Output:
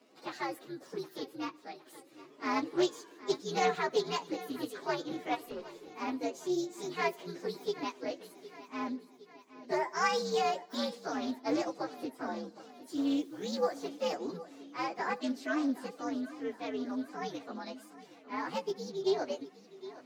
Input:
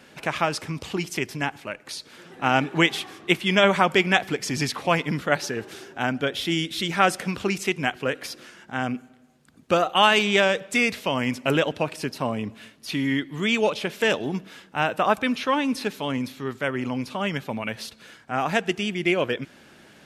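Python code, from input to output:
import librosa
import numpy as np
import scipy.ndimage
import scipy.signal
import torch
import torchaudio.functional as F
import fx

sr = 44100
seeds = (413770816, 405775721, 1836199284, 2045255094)

y = fx.partial_stretch(x, sr, pct=126)
y = fx.ladder_highpass(y, sr, hz=250.0, resonance_pct=40)
y = fx.peak_eq(y, sr, hz=2700.0, db=-5.0, octaves=0.39)
y = fx.echo_feedback(y, sr, ms=764, feedback_pct=55, wet_db=-16.5)
y = fx.tube_stage(y, sr, drive_db=35.0, bias=0.25, at=(5.46, 5.92))
y = fx.high_shelf(y, sr, hz=5500.0, db=-10.5)
y = fx.dmg_noise_colour(y, sr, seeds[0], colour='white', level_db=-66.0, at=(12.88, 13.88), fade=0.02)
y = fx.doppler_dist(y, sr, depth_ms=0.15)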